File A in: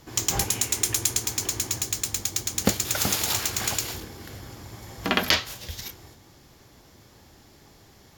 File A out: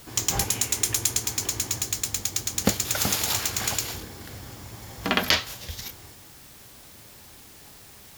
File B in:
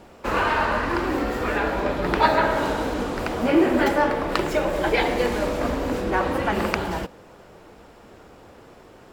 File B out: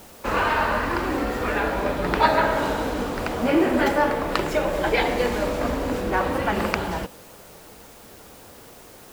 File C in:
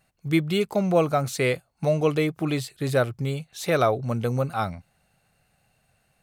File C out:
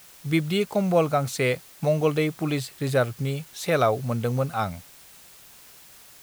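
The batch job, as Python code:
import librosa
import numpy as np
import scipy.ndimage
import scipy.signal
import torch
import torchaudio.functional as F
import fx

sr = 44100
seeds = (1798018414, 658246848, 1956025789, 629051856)

p1 = fx.peak_eq(x, sr, hz=350.0, db=-3.5, octaves=0.23)
p2 = fx.quant_dither(p1, sr, seeds[0], bits=6, dither='triangular')
p3 = p1 + F.gain(torch.from_numpy(p2), -11.5).numpy()
y = F.gain(torch.from_numpy(p3), -2.0).numpy()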